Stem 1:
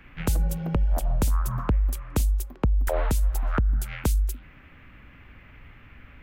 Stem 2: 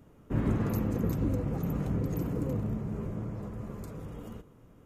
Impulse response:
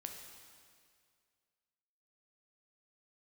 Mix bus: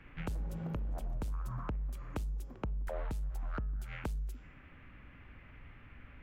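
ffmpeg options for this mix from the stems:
-filter_complex "[0:a]bandreject=frequency=211.9:width_type=h:width=4,bandreject=frequency=423.8:width_type=h:width=4,bandreject=frequency=635.7:width_type=h:width=4,bandreject=frequency=847.6:width_type=h:width=4,bandreject=frequency=1059.5:width_type=h:width=4,bandreject=frequency=1271.4:width_type=h:width=4,bandreject=frequency=1483.3:width_type=h:width=4,bandreject=frequency=1695.2:width_type=h:width=4,bandreject=frequency=1907.1:width_type=h:width=4,bandreject=frequency=2119:width_type=h:width=4,bandreject=frequency=2330.9:width_type=h:width=4,bandreject=frequency=2542.8:width_type=h:width=4,bandreject=frequency=2754.7:width_type=h:width=4,bandreject=frequency=2966.6:width_type=h:width=4,bandreject=frequency=3178.5:width_type=h:width=4,bandreject=frequency=3390.4:width_type=h:width=4,bandreject=frequency=3602.3:width_type=h:width=4,bandreject=frequency=3814.2:width_type=h:width=4,bandreject=frequency=4026.1:width_type=h:width=4,bandreject=frequency=4238:width_type=h:width=4,bandreject=frequency=4449.9:width_type=h:width=4,bandreject=frequency=4661.8:width_type=h:width=4,bandreject=frequency=4873.7:width_type=h:width=4,bandreject=frequency=5085.6:width_type=h:width=4,bandreject=frequency=5297.5:width_type=h:width=4,bandreject=frequency=5509.4:width_type=h:width=4,bandreject=frequency=5721.3:width_type=h:width=4,bandreject=frequency=5933.2:width_type=h:width=4,bandreject=frequency=6145.1:width_type=h:width=4,bandreject=frequency=6357:width_type=h:width=4,bandreject=frequency=6568.9:width_type=h:width=4,bandreject=frequency=6780.8:width_type=h:width=4,bandreject=frequency=6992.7:width_type=h:width=4,bandreject=frequency=7204.6:width_type=h:width=4,bandreject=frequency=7416.5:width_type=h:width=4,asoftclip=type=tanh:threshold=-19dB,volume=-5dB[link_01];[1:a]asoftclip=type=hard:threshold=-32dB,volume=-11dB,afade=type=out:start_time=0.92:duration=0.43:silence=0.316228[link_02];[link_01][link_02]amix=inputs=2:normalize=0,lowpass=frequency=3100:poles=1,acompressor=threshold=-37dB:ratio=3"

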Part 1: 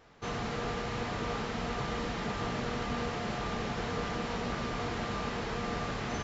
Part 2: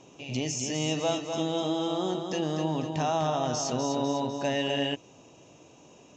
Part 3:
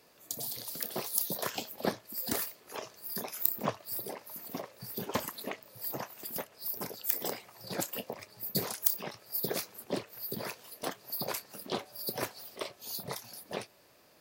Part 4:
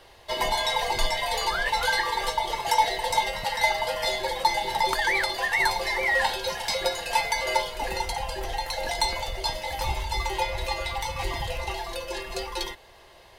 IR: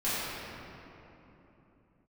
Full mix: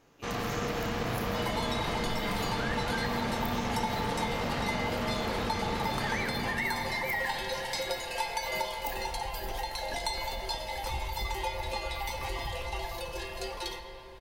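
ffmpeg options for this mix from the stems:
-filter_complex "[0:a]aeval=exprs='0.0794*(cos(1*acos(clip(val(0)/0.0794,-1,1)))-cos(1*PI/2))+0.00794*(cos(7*acos(clip(val(0)/0.0794,-1,1)))-cos(7*PI/2))':channel_layout=same,volume=0.5dB,asplit=2[link_01][link_02];[link_02]volume=-7.5dB[link_03];[1:a]volume=-14dB[link_04];[2:a]volume=-14dB,asplit=2[link_05][link_06];[link_06]volume=-16.5dB[link_07];[3:a]adelay=1050,volume=-7dB,asplit=2[link_08][link_09];[link_09]volume=-15dB[link_10];[4:a]atrim=start_sample=2205[link_11];[link_03][link_07][link_10]amix=inputs=3:normalize=0[link_12];[link_12][link_11]afir=irnorm=-1:irlink=0[link_13];[link_01][link_04][link_05][link_08][link_13]amix=inputs=5:normalize=0,acompressor=threshold=-28dB:ratio=4"

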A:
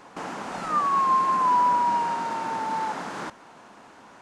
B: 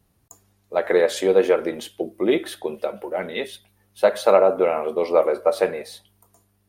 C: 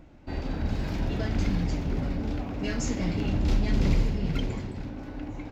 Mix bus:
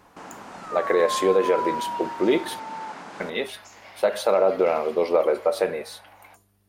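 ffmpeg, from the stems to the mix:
ffmpeg -i stem1.wav -i stem2.wav -i stem3.wav -filter_complex "[0:a]volume=-7dB[link_01];[1:a]volume=0dB,asplit=3[link_02][link_03][link_04];[link_02]atrim=end=2.6,asetpts=PTS-STARTPTS,afade=type=out:start_time=2.596:duration=0.004:curve=hsin[link_05];[link_03]atrim=start=2.6:end=3.2,asetpts=PTS-STARTPTS,volume=0[link_06];[link_04]atrim=start=3.2,asetpts=PTS-STARTPTS,afade=type=in:duration=0.004:curve=hsin[link_07];[link_05][link_06][link_07]concat=n=3:v=0:a=1[link_08];[2:a]highpass=frequency=740:width=0.5412,highpass=frequency=740:width=1.3066,acompressor=threshold=-42dB:ratio=6,lowpass=frequency=3200:poles=1,adelay=850,volume=1dB[link_09];[link_01][link_08][link_09]amix=inputs=3:normalize=0,alimiter=limit=-10dB:level=0:latency=1:release=74" out.wav

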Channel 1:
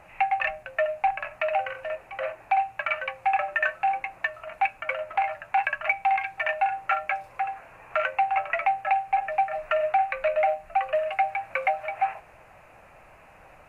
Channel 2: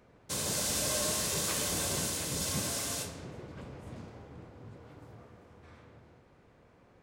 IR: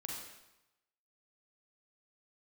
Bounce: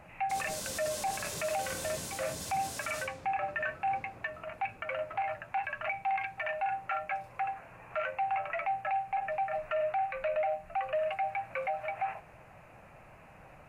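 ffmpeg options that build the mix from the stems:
-filter_complex "[0:a]equalizer=frequency=150:width=0.69:gain=8.5,volume=-4dB[link_01];[1:a]volume=-7dB[link_02];[link_01][link_02]amix=inputs=2:normalize=0,alimiter=level_in=1dB:limit=-24dB:level=0:latency=1:release=39,volume=-1dB"

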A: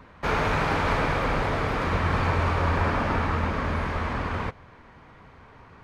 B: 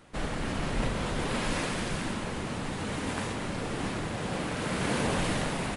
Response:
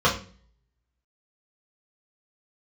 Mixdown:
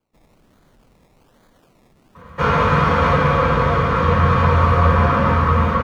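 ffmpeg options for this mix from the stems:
-filter_complex "[0:a]bandreject=frequency=50:width_type=h:width=6,bandreject=frequency=100:width_type=h:width=6,adelay=2150,volume=-4.5dB,asplit=2[link_01][link_02];[link_02]volume=-7dB[link_03];[1:a]alimiter=level_in=1.5dB:limit=-24dB:level=0:latency=1:release=29,volume=-1.5dB,acrusher=samples=23:mix=1:aa=0.000001:lfo=1:lforange=13.8:lforate=1.2,volume=-13dB,afade=type=in:start_time=4.16:duration=0.49:silence=0.398107[link_04];[2:a]atrim=start_sample=2205[link_05];[link_03][link_05]afir=irnorm=-1:irlink=0[link_06];[link_01][link_04][link_06]amix=inputs=3:normalize=0"

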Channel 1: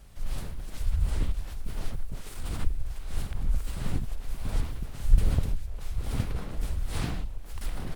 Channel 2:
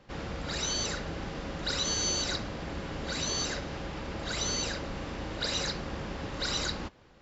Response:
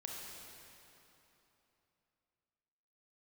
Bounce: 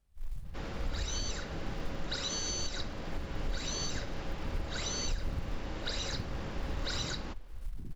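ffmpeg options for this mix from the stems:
-filter_complex "[0:a]afwtdn=0.0355,acrusher=bits=8:mode=log:mix=0:aa=0.000001,volume=-7.5dB[link_01];[1:a]adelay=450,volume=-3.5dB[link_02];[link_01][link_02]amix=inputs=2:normalize=0,alimiter=level_in=0.5dB:limit=-24dB:level=0:latency=1:release=241,volume=-0.5dB"

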